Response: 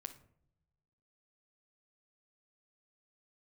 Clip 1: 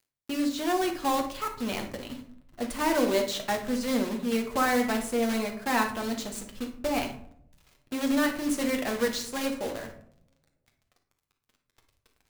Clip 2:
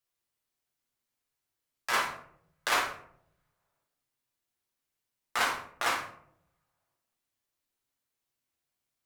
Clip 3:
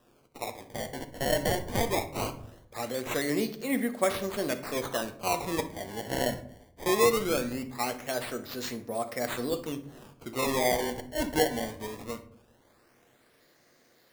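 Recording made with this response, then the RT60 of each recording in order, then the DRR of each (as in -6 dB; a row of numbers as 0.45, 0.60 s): 3; 0.65 s, 0.65 s, not exponential; 2.5, -2.5, 7.5 dB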